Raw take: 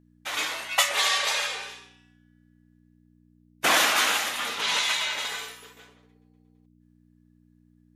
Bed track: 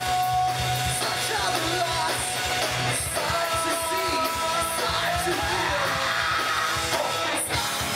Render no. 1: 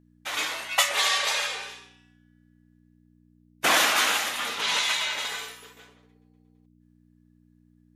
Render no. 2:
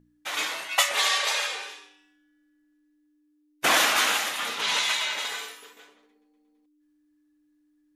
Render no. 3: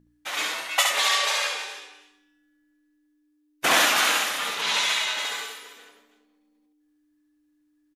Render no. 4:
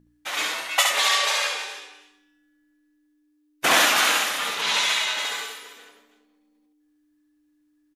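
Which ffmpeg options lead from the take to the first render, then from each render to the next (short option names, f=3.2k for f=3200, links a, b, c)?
-af anull
-af "bandreject=f=60:t=h:w=4,bandreject=f=120:t=h:w=4,bandreject=f=180:t=h:w=4,bandreject=f=240:t=h:w=4"
-af "aecho=1:1:69|322:0.631|0.178"
-af "volume=1.5dB"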